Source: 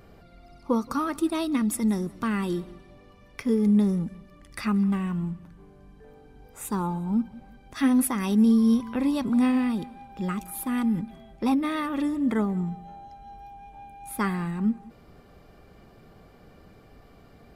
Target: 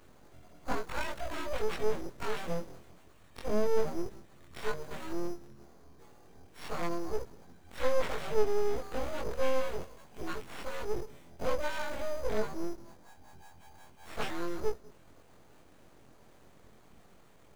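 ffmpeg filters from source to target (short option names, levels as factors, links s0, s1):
-filter_complex "[0:a]afftfilt=real='re':imag='-im':win_size=2048:overlap=0.75,acrusher=samples=8:mix=1:aa=0.000001,acrossover=split=4000[s0][s1];[s1]acompressor=threshold=0.00224:ratio=4:attack=1:release=60[s2];[s0][s2]amix=inputs=2:normalize=0,aeval=exprs='abs(val(0))':c=same"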